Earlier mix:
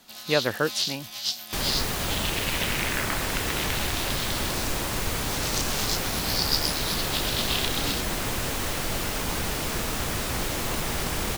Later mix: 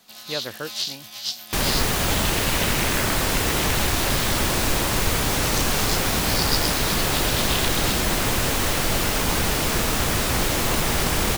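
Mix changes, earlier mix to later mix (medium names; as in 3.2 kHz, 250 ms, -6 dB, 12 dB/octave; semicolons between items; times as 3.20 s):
speech -7.5 dB; second sound +6.5 dB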